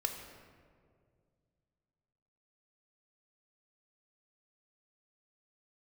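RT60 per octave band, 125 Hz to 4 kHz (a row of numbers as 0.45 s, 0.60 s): 3.1 s, 2.7 s, 2.4 s, 1.8 s, 1.4 s, 1.0 s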